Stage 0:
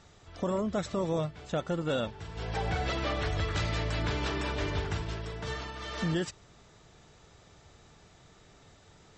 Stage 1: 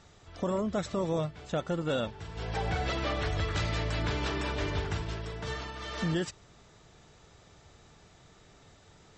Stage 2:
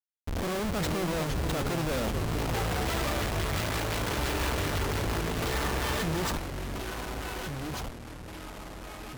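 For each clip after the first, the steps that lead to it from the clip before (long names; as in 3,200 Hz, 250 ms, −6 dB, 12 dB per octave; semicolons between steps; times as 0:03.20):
no processing that can be heard
healed spectral selection 0:05.52–0:06.34, 650–1,700 Hz before; comparator with hysteresis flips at −43.5 dBFS; delay with pitch and tempo change per echo 306 ms, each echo −3 semitones, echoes 3, each echo −6 dB; level +3.5 dB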